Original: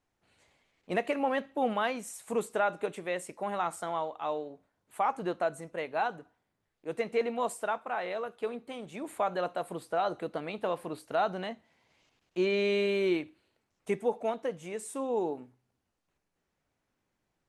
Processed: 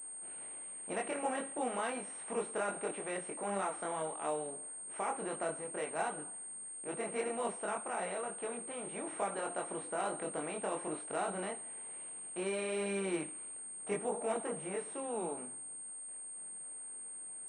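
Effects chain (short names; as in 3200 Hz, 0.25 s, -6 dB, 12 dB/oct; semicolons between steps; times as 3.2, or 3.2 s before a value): per-bin compression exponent 0.6; chorus voices 6, 0.58 Hz, delay 23 ms, depth 3.4 ms; pulse-width modulation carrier 8600 Hz; gain -7 dB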